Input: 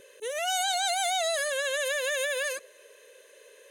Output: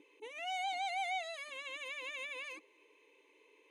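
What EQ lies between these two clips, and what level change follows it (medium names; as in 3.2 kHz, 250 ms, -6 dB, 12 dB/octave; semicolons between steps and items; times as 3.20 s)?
vowel filter u; +8.0 dB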